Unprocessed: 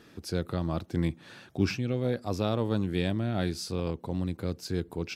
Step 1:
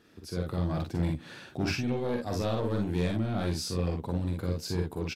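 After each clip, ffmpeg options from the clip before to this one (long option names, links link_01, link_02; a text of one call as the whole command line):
ffmpeg -i in.wav -filter_complex "[0:a]dynaudnorm=framelen=270:gausssize=3:maxgain=8.5dB,asoftclip=type=tanh:threshold=-16.5dB,asplit=2[link_01][link_02];[link_02]aecho=0:1:45|58:0.631|0.501[link_03];[link_01][link_03]amix=inputs=2:normalize=0,volume=-7.5dB" out.wav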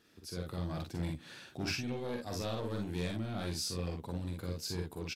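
ffmpeg -i in.wav -af "highshelf=frequency=2200:gain=8,volume=-8dB" out.wav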